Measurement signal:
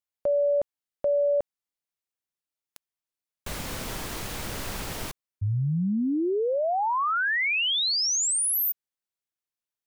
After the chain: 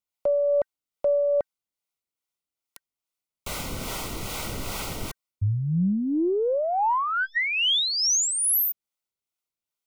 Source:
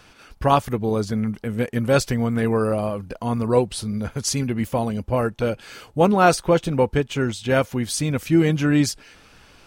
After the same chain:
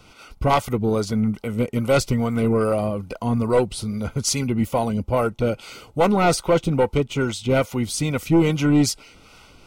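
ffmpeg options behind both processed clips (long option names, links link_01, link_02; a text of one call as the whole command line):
ffmpeg -i in.wav -filter_complex "[0:a]acrossover=split=450[link_01][link_02];[link_01]aeval=exprs='val(0)*(1-0.5/2+0.5/2*cos(2*PI*2.4*n/s))':channel_layout=same[link_03];[link_02]aeval=exprs='val(0)*(1-0.5/2-0.5/2*cos(2*PI*2.4*n/s))':channel_layout=same[link_04];[link_03][link_04]amix=inputs=2:normalize=0,aeval=exprs='0.668*(cos(1*acos(clip(val(0)/0.668,-1,1)))-cos(1*PI/2))+0.168*(cos(2*acos(clip(val(0)/0.668,-1,1)))-cos(2*PI/2))+0.168*(cos(5*acos(clip(val(0)/0.668,-1,1)))-cos(5*PI/2))':channel_layout=same,asuperstop=centerf=1700:order=20:qfactor=5.4,volume=-3dB" out.wav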